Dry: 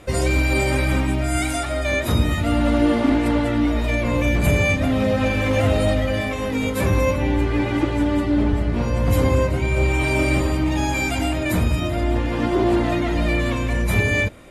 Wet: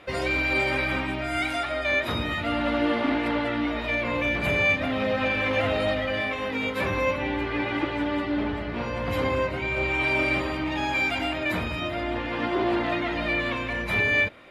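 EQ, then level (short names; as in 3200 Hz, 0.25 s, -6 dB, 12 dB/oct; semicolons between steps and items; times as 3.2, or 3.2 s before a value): air absorption 360 m; tilt +4 dB/oct; 0.0 dB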